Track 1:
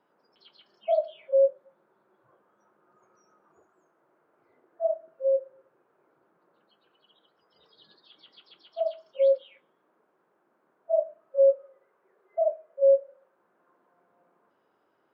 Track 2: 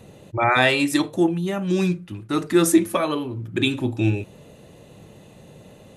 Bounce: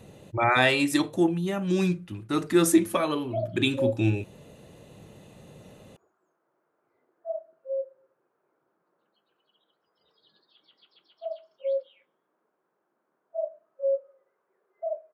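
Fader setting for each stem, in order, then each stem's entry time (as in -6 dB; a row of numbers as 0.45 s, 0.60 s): -6.5 dB, -3.5 dB; 2.45 s, 0.00 s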